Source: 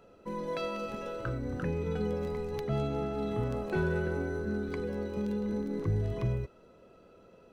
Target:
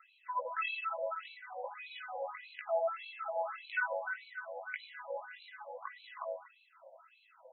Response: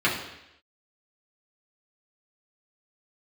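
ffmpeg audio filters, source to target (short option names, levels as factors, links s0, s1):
-filter_complex "[0:a]flanger=delay=18.5:depth=2.7:speed=1.9,asplit=2[s0][s1];[1:a]atrim=start_sample=2205,asetrate=74970,aresample=44100[s2];[s1][s2]afir=irnorm=-1:irlink=0,volume=0.0501[s3];[s0][s3]amix=inputs=2:normalize=0,afftfilt=real='re*between(b*sr/1024,670*pow(3100/670,0.5+0.5*sin(2*PI*1.7*pts/sr))/1.41,670*pow(3100/670,0.5+0.5*sin(2*PI*1.7*pts/sr))*1.41)':imag='im*between(b*sr/1024,670*pow(3100/670,0.5+0.5*sin(2*PI*1.7*pts/sr))/1.41,670*pow(3100/670,0.5+0.5*sin(2*PI*1.7*pts/sr))*1.41)':win_size=1024:overlap=0.75,volume=3.35"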